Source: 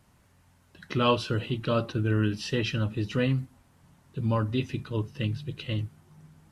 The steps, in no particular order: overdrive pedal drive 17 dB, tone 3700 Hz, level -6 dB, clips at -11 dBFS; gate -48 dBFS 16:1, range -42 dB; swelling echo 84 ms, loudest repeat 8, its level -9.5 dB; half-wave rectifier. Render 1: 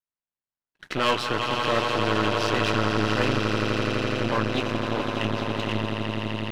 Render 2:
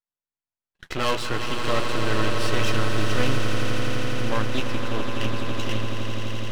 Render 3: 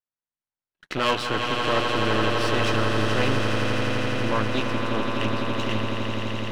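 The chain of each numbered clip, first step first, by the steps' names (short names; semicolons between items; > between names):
swelling echo > gate > half-wave rectifier > overdrive pedal; gate > overdrive pedal > half-wave rectifier > swelling echo; half-wave rectifier > gate > swelling echo > overdrive pedal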